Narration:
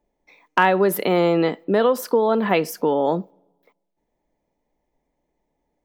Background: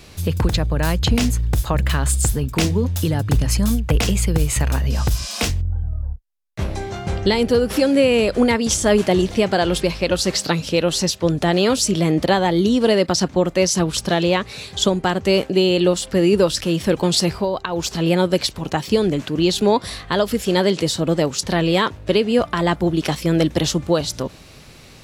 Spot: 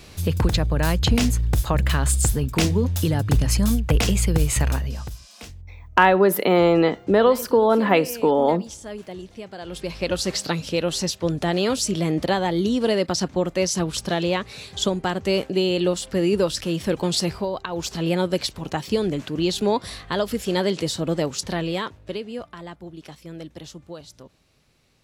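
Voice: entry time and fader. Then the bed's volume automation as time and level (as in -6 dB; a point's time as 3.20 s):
5.40 s, +1.5 dB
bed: 4.69 s -1.5 dB
5.23 s -19.5 dB
9.56 s -19.5 dB
10.03 s -5 dB
21.39 s -5 dB
22.74 s -20 dB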